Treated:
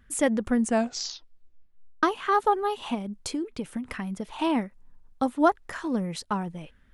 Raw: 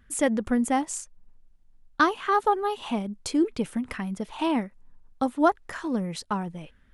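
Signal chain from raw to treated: 0.55 s: tape stop 1.48 s; 2.94–4.27 s: compression 6:1, threshold -28 dBFS, peak gain reduction 10 dB

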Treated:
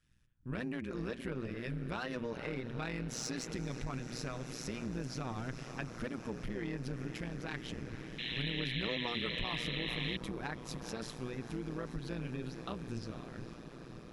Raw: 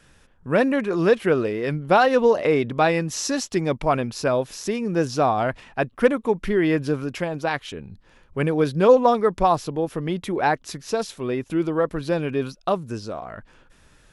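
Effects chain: gate -51 dBFS, range -11 dB; amplifier tone stack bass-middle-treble 6-0-2; hum notches 60/120/180/240/300/360/420 Hz; on a send: echo that smears into a reverb 482 ms, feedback 79%, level -13 dB; on the sum: saturation -35 dBFS, distortion -19 dB; treble shelf 5 kHz -8 dB; compression, threshold -45 dBFS, peak gain reduction 6.5 dB; painted sound noise, 8.18–10.17 s, 1.7–4.1 kHz -49 dBFS; AM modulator 120 Hz, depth 75%; trim +12.5 dB

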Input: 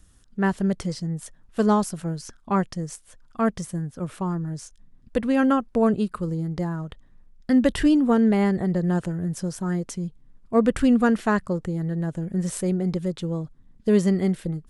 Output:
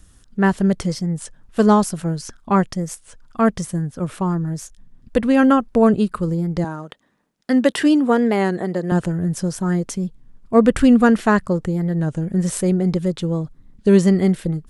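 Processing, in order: 6.65–8.92 s: high-pass 290 Hz 12 dB/octave; warped record 33 1/3 rpm, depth 100 cents; trim +6 dB

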